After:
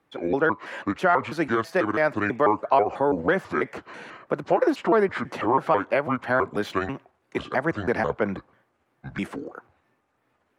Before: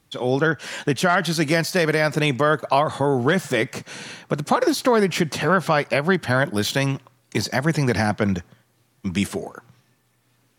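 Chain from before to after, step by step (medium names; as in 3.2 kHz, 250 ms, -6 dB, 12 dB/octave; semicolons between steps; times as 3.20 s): pitch shift switched off and on -6.5 st, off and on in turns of 164 ms; three-band isolator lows -15 dB, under 260 Hz, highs -19 dB, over 2.2 kHz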